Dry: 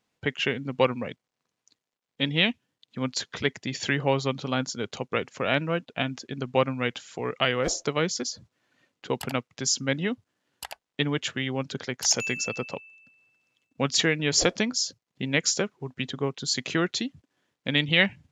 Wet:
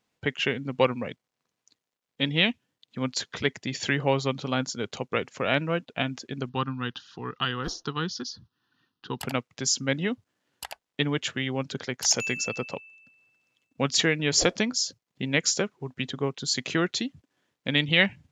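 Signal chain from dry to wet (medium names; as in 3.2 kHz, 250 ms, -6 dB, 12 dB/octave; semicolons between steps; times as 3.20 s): 6.49–9.19 s: static phaser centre 2.2 kHz, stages 6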